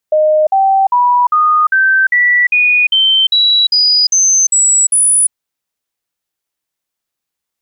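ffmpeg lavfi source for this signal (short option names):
-f lavfi -i "aevalsrc='0.447*clip(min(mod(t,0.4),0.35-mod(t,0.4))/0.005,0,1)*sin(2*PI*616*pow(2,floor(t/0.4)/3)*mod(t,0.4))':d=5.2:s=44100"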